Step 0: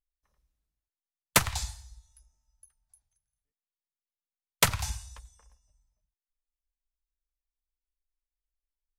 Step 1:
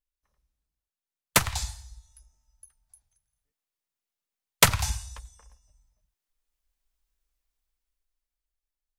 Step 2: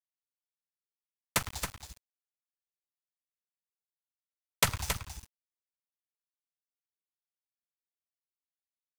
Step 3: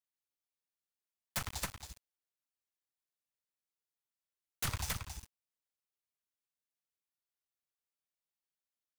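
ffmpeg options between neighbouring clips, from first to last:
-af "dynaudnorm=f=270:g=13:m=14dB,volume=-1dB"
-af "aeval=exprs='val(0)*gte(abs(val(0)),0.0335)':c=same,aecho=1:1:273:0.422,volume=-8.5dB"
-af "aeval=exprs='0.0473*(abs(mod(val(0)/0.0473+3,4)-2)-1)':c=same,volume=-1.5dB"

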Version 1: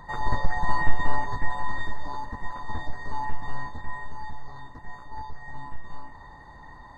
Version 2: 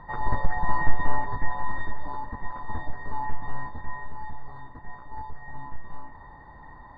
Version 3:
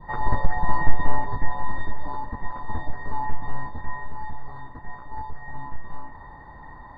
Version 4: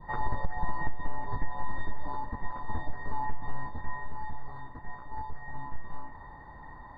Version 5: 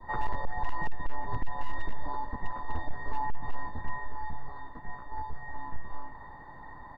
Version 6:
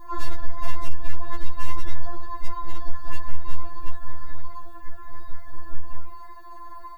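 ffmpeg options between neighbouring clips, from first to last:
-af "lowpass=2.2k"
-af "adynamicequalizer=threshold=0.00708:dfrequency=1500:dqfactor=0.97:tfrequency=1500:tqfactor=0.97:attack=5:release=100:ratio=0.375:range=2.5:mode=cutabove:tftype=bell,volume=3.5dB"
-af "acompressor=threshold=-16dB:ratio=16,volume=-4dB"
-filter_complex "[0:a]acrossover=split=150|320|1800[a][b][c][d];[a]aeval=exprs='abs(val(0))':c=same[e];[d]asplit=6[f][g][h][i][j][k];[g]adelay=82,afreqshift=-58,volume=-9.5dB[l];[h]adelay=164,afreqshift=-116,volume=-16.2dB[m];[i]adelay=246,afreqshift=-174,volume=-23dB[n];[j]adelay=328,afreqshift=-232,volume=-29.7dB[o];[k]adelay=410,afreqshift=-290,volume=-36.5dB[p];[f][l][m][n][o][p]amix=inputs=6:normalize=0[q];[e][b][c][q]amix=inputs=4:normalize=0,volume=20.5dB,asoftclip=hard,volume=-20.5dB,volume=1dB"
-af "flanger=delay=0.5:depth=4.5:regen=-81:speed=1.1:shape=triangular,crystalizer=i=7.5:c=0,afftfilt=real='re*4*eq(mod(b,16),0)':imag='im*4*eq(mod(b,16),0)':win_size=2048:overlap=0.75,volume=8dB"

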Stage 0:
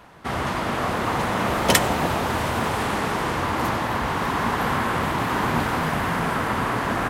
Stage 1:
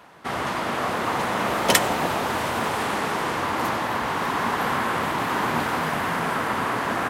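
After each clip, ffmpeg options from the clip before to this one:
-af "highpass=f=240:p=1"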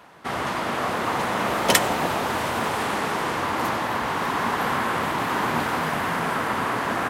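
-af anull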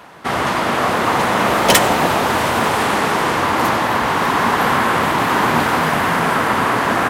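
-af "asoftclip=type=hard:threshold=-13.5dB,volume=8.5dB"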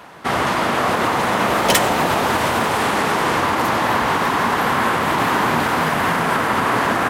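-af "alimiter=limit=-8.5dB:level=0:latency=1:release=88"

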